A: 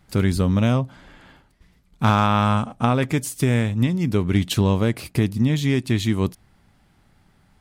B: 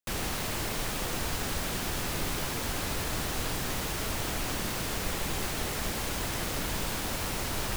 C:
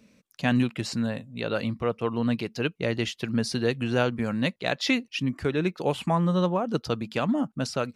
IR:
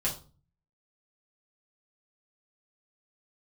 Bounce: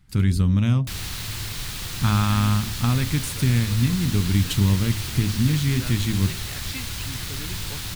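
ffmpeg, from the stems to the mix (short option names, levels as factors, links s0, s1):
-filter_complex "[0:a]lowshelf=f=220:g=7,bandreject=f=54.59:t=h:w=4,bandreject=f=109.18:t=h:w=4,bandreject=f=163.77:t=h:w=4,bandreject=f=218.36:t=h:w=4,bandreject=f=272.95:t=h:w=4,bandreject=f=327.54:t=h:w=4,bandreject=f=382.13:t=h:w=4,bandreject=f=436.72:t=h:w=4,bandreject=f=491.31:t=h:w=4,bandreject=f=545.9:t=h:w=4,bandreject=f=600.49:t=h:w=4,bandreject=f=655.08:t=h:w=4,bandreject=f=709.67:t=h:w=4,bandreject=f=764.26:t=h:w=4,volume=0.75[s0];[1:a]equalizer=f=100:t=o:w=0.67:g=9,equalizer=f=250:t=o:w=0.67:g=-5,equalizer=f=4000:t=o:w=0.67:g=5,adelay=800,volume=1.19[s1];[2:a]adelay=1850,volume=0.335[s2];[s0][s1][s2]amix=inputs=3:normalize=0,equalizer=f=580:t=o:w=1.7:g=-13"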